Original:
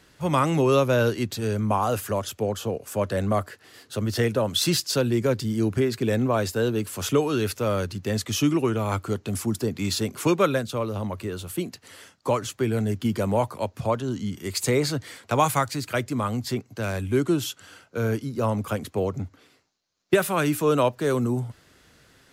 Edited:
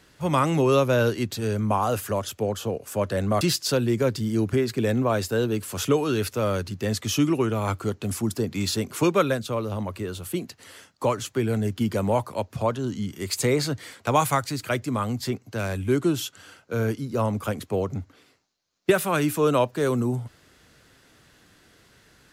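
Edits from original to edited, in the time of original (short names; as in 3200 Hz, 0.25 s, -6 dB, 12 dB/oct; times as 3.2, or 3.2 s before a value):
3.41–4.65 cut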